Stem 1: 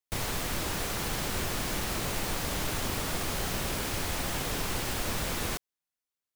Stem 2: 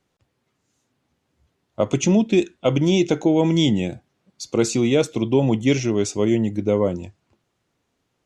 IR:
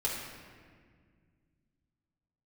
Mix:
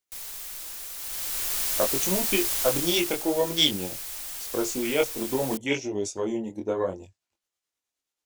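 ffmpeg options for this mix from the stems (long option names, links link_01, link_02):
-filter_complex "[0:a]volume=-6dB,afade=type=in:start_time=0.96:duration=0.65:silence=0.298538,afade=type=out:start_time=2.62:duration=0.62:silence=0.354813[link_01];[1:a]afwtdn=0.0316,tremolo=f=9.4:d=0.41,flanger=delay=20:depth=3.2:speed=0.84,volume=2dB[link_02];[link_01][link_02]amix=inputs=2:normalize=0,equalizer=frequency=140:width_type=o:width=2.3:gain=-14.5,crystalizer=i=4.5:c=0"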